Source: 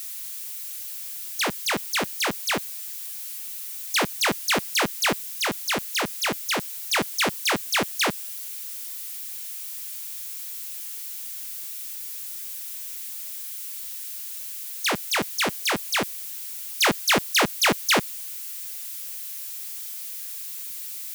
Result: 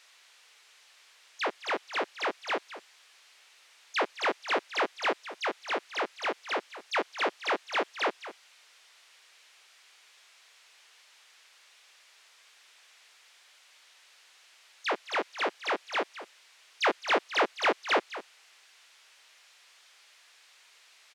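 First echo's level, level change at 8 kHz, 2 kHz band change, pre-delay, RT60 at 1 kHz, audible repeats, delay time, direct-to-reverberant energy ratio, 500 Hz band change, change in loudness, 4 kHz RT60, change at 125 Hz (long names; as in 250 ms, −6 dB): −14.0 dB, −21.0 dB, −6.0 dB, no reverb audible, no reverb audible, 1, 213 ms, no reverb audible, −2.0 dB, −4.5 dB, no reverb audible, below −25 dB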